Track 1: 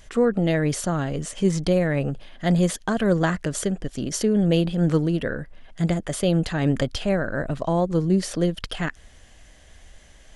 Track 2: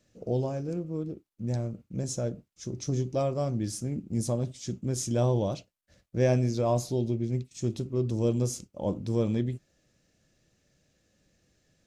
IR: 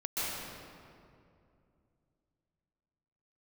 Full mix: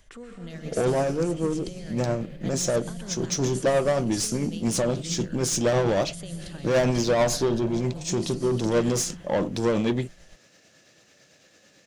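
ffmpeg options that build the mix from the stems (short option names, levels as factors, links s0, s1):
-filter_complex "[0:a]acrossover=split=130|3000[s0][s1][s2];[s1]acompressor=threshold=0.0178:ratio=4[s3];[s0][s3][s2]amix=inputs=3:normalize=0,volume=0.282,asplit=2[s4][s5];[s5]volume=0.631[s6];[1:a]highpass=f=69:w=0.5412,highpass=f=69:w=1.3066,asplit=2[s7][s8];[s8]highpass=f=720:p=1,volume=20,asoftclip=type=tanh:threshold=0.282[s9];[s7][s9]amix=inputs=2:normalize=0,lowpass=f=5200:p=1,volume=0.501,adelay=500,volume=0.891[s10];[2:a]atrim=start_sample=2205[s11];[s6][s11]afir=irnorm=-1:irlink=0[s12];[s4][s10][s12]amix=inputs=3:normalize=0,tremolo=f=9:d=0.34"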